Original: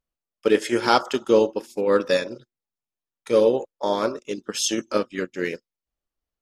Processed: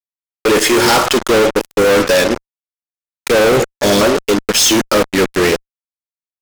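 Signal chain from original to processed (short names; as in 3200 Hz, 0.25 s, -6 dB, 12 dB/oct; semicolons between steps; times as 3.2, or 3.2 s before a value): 3.56–4.01 graphic EQ 125/1000/8000 Hz +11/-11/+10 dB; fuzz box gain 41 dB, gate -37 dBFS; gain +4 dB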